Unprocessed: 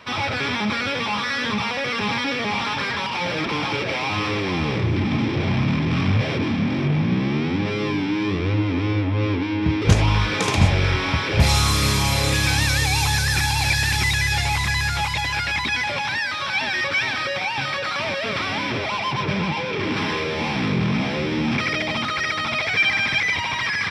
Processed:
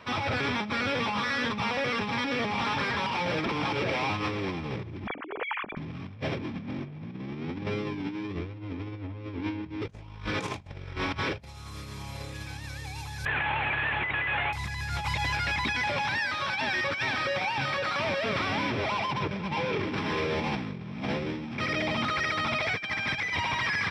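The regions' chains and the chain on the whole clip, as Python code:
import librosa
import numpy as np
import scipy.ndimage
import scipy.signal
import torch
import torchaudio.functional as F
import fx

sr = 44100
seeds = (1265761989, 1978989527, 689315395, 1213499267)

y = fx.chain(x, sr, fx.sine_speech(),
    fx.lowpass(hz=2600.0, slope=12), at=(5.07, 5.77))
y = fx.chain(y, sr, fx.cvsd(bps=16000),
    fx.tilt_eq(slope=4.5),
    fx.env_flatten(amount_pct=50), at=(13.25, 14.53))
y = fx.high_shelf(y, sr, hz=2100.0, db=-6.5)
y = fx.over_compress(y, sr, threshold_db=-26.0, ratio=-0.5)
y = y * 10.0 ** (-5.0 / 20.0)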